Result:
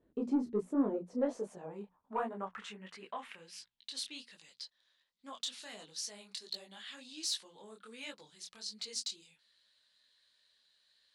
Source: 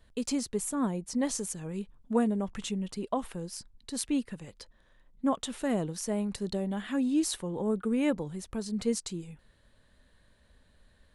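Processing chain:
mains-hum notches 60/120/180/240 Hz
in parallel at +0.5 dB: brickwall limiter −23 dBFS, peak gain reduction 10 dB
on the sum: band-pass filter sweep 320 Hz → 4,400 Hz, 0:00.50–0:04.24
soft clipping −21.5 dBFS, distortion −18 dB
micro pitch shift up and down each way 47 cents
level +3.5 dB

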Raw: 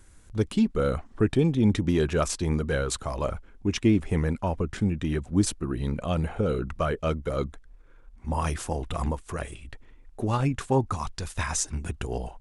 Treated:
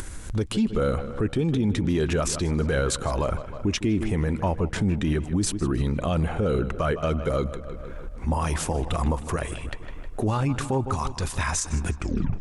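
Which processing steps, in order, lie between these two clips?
turntable brake at the end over 0.45 s
feedback echo with a low-pass in the loop 156 ms, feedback 55%, low-pass 4,900 Hz, level −16.5 dB
upward compression, threshold −31 dBFS
brickwall limiter −22.5 dBFS, peak gain reduction 11.5 dB
level +6.5 dB

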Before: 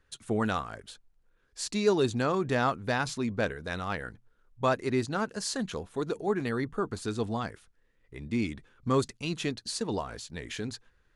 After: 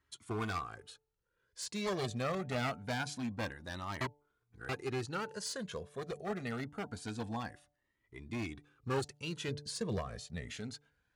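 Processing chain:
wavefolder on the positive side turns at −26.5 dBFS
high-pass filter 80 Hz
0:04.01–0:04.69: reverse
hum removal 146.3 Hz, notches 6
0:09.48–0:10.58: low-shelf EQ 270 Hz +8.5 dB
flanger whose copies keep moving one way rising 0.25 Hz
level −2 dB

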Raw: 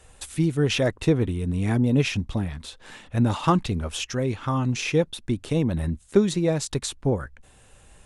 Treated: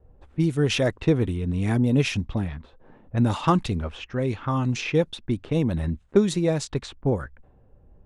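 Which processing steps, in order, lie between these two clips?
low-pass that shuts in the quiet parts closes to 430 Hz, open at −19 dBFS

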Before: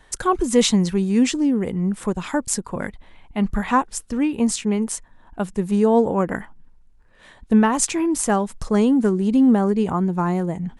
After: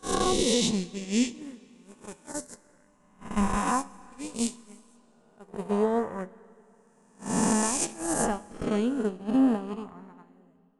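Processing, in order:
peak hold with a rise ahead of every peak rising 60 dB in 2.93 s
noise gate −13 dBFS, range −41 dB
downward compressor 4 to 1, threshold −22 dBFS, peak gain reduction 12 dB
flanger 0.3 Hz, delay 10 ms, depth 3.3 ms, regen +77%
on a send at −22 dB: convolution reverb RT60 2.8 s, pre-delay 60 ms
on the sum: dynamic equaliser 1,500 Hz, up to −4 dB, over −49 dBFS, Q 1.1
level +4 dB

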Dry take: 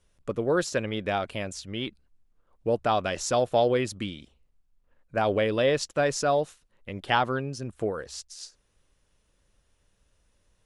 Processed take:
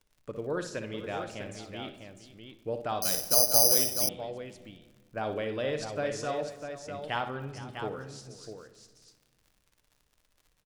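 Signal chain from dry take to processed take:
high-shelf EQ 9,400 Hz −4 dB
surface crackle 56 per second −40 dBFS
on a send: multi-tap delay 59/461/651 ms −9/−16/−7.5 dB
on the sum: rectangular room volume 1,500 cubic metres, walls mixed, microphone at 0.49 metres
0:03.02–0:04.09: bad sample-rate conversion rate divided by 8×, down filtered, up zero stuff
level −9 dB

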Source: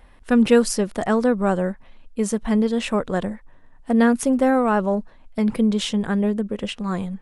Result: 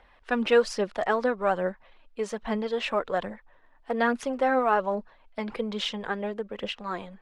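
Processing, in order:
three-way crossover with the lows and the highs turned down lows −14 dB, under 420 Hz, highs −23 dB, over 5,200 Hz
phase shifter 1.2 Hz, delay 3.7 ms, feedback 37%
level −2 dB

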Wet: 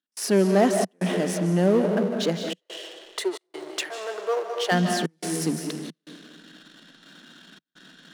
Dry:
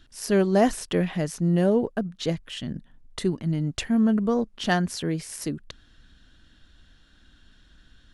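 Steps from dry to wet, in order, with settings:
comb and all-pass reverb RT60 1.4 s, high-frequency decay 0.95×, pre-delay 115 ms, DRR 6 dB
gate pattern ".xxxx.xxxxxxxxx" 89 BPM −60 dB
power curve on the samples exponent 0.7
elliptic high-pass filter 180 Hz, stop band 40 dB, from 0:02.58 370 Hz, from 0:04.71 160 Hz
level −2 dB

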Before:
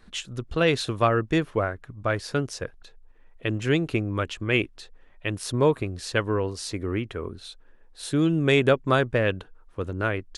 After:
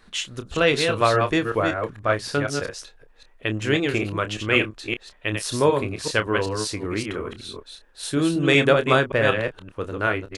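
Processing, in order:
delay that plays each chunk backwards 190 ms, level −4.5 dB
low-shelf EQ 380 Hz −7 dB
double-tracking delay 28 ms −10 dB
level +4 dB

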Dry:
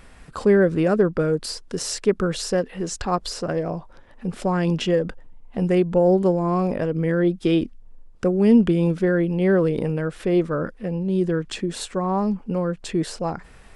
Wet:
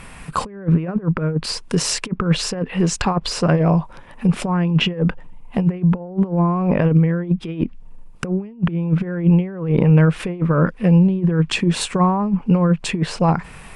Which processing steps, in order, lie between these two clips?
treble cut that deepens with the level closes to 2,100 Hz, closed at −17.5 dBFS
compressor whose output falls as the input rises −24 dBFS, ratio −0.5
graphic EQ with 15 bands 160 Hz +10 dB, 1,000 Hz +7 dB, 2,500 Hz +8 dB, 10,000 Hz +10 dB
level +1.5 dB

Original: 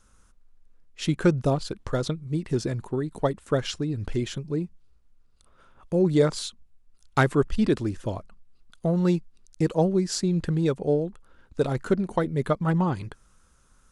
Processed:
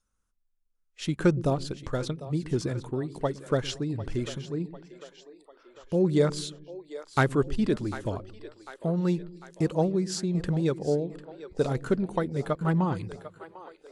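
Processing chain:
shaped tremolo saw down 0.87 Hz, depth 30%
echo with a time of its own for lows and highs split 370 Hz, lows 115 ms, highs 748 ms, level −14 dB
noise reduction from a noise print of the clip's start 18 dB
level −1.5 dB

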